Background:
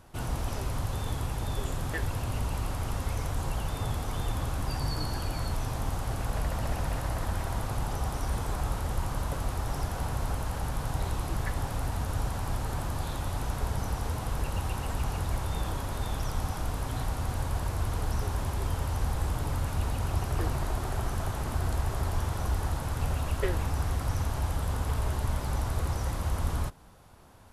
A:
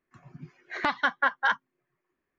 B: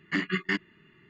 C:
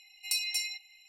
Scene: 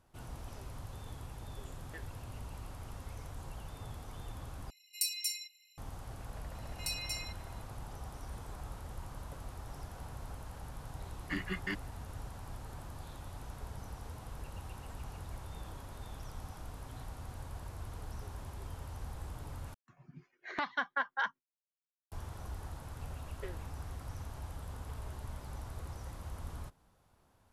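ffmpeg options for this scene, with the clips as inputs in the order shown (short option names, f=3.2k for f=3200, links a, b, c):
-filter_complex "[3:a]asplit=2[a][b];[0:a]volume=-14dB[c];[a]aderivative[d];[1:a]agate=range=-33dB:threshold=-58dB:ratio=3:release=100:detection=peak[e];[c]asplit=3[f][g][h];[f]atrim=end=4.704[i];[d]atrim=end=1.08,asetpts=PTS-STARTPTS,volume=-1.5dB[j];[g]atrim=start=5.776:end=19.744[k];[e]atrim=end=2.38,asetpts=PTS-STARTPTS,volume=-9dB[l];[h]atrim=start=22.116[m];[b]atrim=end=1.08,asetpts=PTS-STARTPTS,volume=-7.5dB,afade=t=in:d=0.004:c=hsin,afade=t=out:st=1.076:d=0.004:c=hsin,adelay=6550[n];[2:a]atrim=end=1.09,asetpts=PTS-STARTPTS,volume=-9.5dB,afade=t=in:d=0.004:c=hsin,afade=t=out:st=1.086:d=0.004:c=hsin,adelay=11180[o];[i][j]acrossfade=d=0.004:c1=hsin:c2=hsin[p];[p][k]acrossfade=d=0.004:c1=hsin:c2=hsin[q];[q][l]acrossfade=d=0.004:c1=hsin:c2=hsin[r];[r][m]acrossfade=d=0.004:c1=hsin:c2=hsin[s];[s][n][o]amix=inputs=3:normalize=0"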